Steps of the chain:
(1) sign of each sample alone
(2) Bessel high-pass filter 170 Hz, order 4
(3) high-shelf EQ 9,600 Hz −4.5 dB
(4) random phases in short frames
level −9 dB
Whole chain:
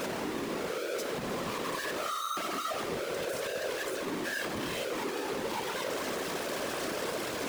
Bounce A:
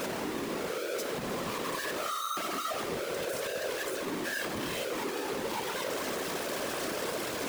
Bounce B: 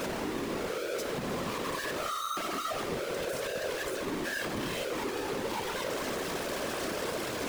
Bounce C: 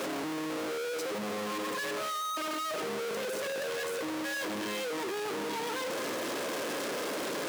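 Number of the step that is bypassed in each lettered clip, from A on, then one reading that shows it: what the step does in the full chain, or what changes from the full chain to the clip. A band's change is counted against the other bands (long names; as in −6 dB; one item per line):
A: 3, 8 kHz band +1.5 dB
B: 2, 125 Hz band +3.0 dB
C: 4, 125 Hz band −4.5 dB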